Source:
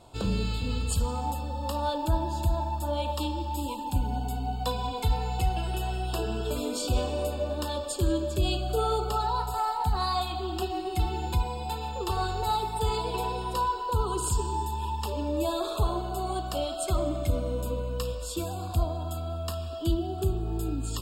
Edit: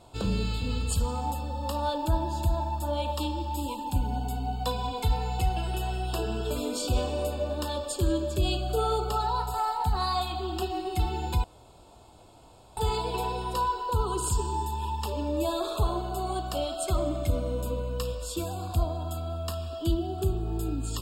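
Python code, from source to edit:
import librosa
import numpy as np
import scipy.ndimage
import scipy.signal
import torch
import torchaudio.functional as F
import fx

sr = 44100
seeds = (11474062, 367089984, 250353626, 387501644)

y = fx.edit(x, sr, fx.room_tone_fill(start_s=11.44, length_s=1.33), tone=tone)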